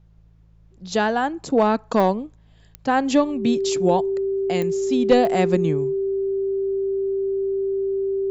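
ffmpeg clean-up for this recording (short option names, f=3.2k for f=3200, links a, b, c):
-af "adeclick=t=4,bandreject=f=54.4:t=h:w=4,bandreject=f=108.8:t=h:w=4,bandreject=f=163.2:t=h:w=4,bandreject=f=390:w=30,agate=range=-21dB:threshold=-44dB"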